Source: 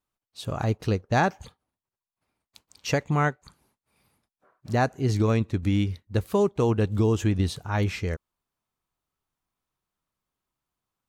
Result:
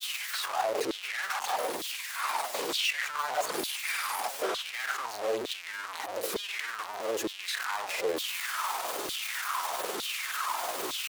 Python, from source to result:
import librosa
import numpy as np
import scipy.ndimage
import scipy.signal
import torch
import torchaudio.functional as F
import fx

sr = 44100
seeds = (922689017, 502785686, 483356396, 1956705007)

y = np.sign(x) * np.sqrt(np.mean(np.square(x)))
y = fx.granulator(y, sr, seeds[0], grain_ms=100.0, per_s=20.0, spray_ms=18.0, spread_st=0)
y = fx.filter_lfo_highpass(y, sr, shape='saw_down', hz=1.1, low_hz=340.0, high_hz=3700.0, q=4.4)
y = y * librosa.db_to_amplitude(-4.5)